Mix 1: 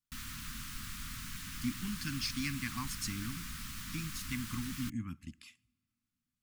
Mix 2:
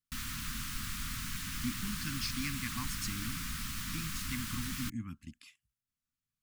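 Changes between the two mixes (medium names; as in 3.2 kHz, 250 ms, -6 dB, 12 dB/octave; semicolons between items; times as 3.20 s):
background +4.5 dB; reverb: off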